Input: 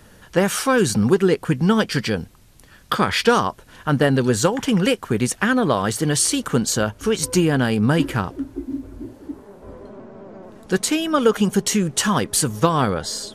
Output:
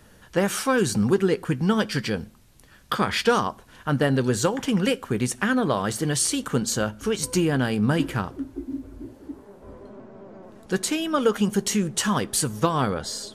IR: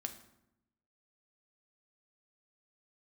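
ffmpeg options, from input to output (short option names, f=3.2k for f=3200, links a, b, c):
-filter_complex "[0:a]asplit=2[a][b];[1:a]atrim=start_sample=2205,afade=t=out:st=0.2:d=0.01,atrim=end_sample=9261,adelay=15[c];[b][c]afir=irnorm=-1:irlink=0,volume=-13dB[d];[a][d]amix=inputs=2:normalize=0,volume=-4.5dB"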